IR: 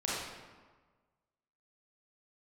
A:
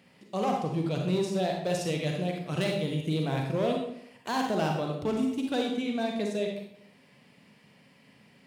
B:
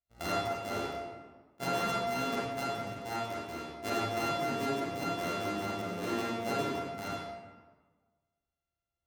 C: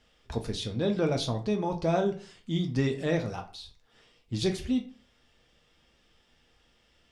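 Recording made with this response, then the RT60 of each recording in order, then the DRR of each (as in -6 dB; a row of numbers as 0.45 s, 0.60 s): B; 0.70 s, 1.4 s, 0.40 s; 1.0 dB, -7.5 dB, 3.0 dB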